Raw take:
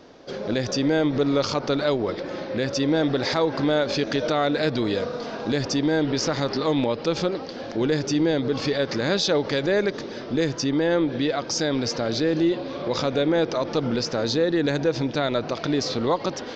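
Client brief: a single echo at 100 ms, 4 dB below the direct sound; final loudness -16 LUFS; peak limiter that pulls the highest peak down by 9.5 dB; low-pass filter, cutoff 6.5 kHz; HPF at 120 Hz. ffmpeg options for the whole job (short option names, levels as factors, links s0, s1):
-af "highpass=120,lowpass=6500,alimiter=limit=0.112:level=0:latency=1,aecho=1:1:100:0.631,volume=3.55"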